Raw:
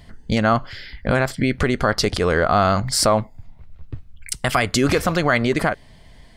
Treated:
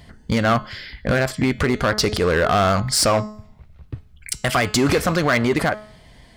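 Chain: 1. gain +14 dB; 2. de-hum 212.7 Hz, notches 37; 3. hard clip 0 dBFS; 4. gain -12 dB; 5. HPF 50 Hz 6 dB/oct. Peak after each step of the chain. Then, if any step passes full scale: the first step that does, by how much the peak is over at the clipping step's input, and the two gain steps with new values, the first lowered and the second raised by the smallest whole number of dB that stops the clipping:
+9.0, +8.5, 0.0, -12.0, -9.0 dBFS; step 1, 8.5 dB; step 1 +5 dB, step 4 -3 dB

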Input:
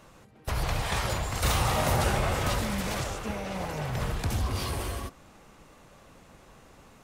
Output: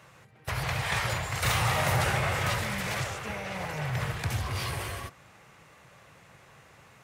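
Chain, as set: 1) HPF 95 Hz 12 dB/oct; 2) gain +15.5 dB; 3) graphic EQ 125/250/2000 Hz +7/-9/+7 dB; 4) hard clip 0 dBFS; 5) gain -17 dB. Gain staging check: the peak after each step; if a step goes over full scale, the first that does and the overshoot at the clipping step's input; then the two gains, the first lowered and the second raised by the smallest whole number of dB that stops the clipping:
-14.0, +1.5, +3.0, 0.0, -17.0 dBFS; step 2, 3.0 dB; step 2 +12.5 dB, step 5 -14 dB

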